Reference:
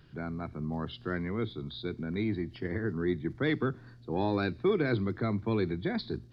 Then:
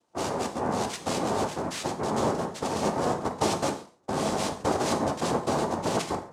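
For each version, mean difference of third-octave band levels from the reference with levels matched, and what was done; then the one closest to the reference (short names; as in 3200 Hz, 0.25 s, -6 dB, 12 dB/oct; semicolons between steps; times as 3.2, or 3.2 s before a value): 13.5 dB: compressor, threshold -31 dBFS, peak gain reduction 8.5 dB; gate with hold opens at -39 dBFS; noise vocoder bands 2; non-linear reverb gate 0.16 s falling, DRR 5.5 dB; gain +7 dB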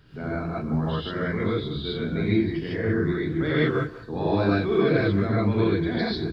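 6.5 dB: in parallel at -1 dB: limiter -26 dBFS, peak gain reduction 9 dB; on the sum: flange 1.8 Hz, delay 1.9 ms, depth 9.3 ms, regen -72%; speakerphone echo 0.19 s, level -15 dB; non-linear reverb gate 0.17 s rising, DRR -7.5 dB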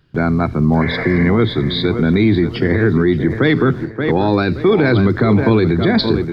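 4.5 dB: spectral repair 0.84–1.21, 450–3300 Hz after; gate with hold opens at -39 dBFS; on a send: tape echo 0.575 s, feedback 36%, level -10 dB, low-pass 2400 Hz; on the sum: maximiser +25.5 dB; gain -4 dB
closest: third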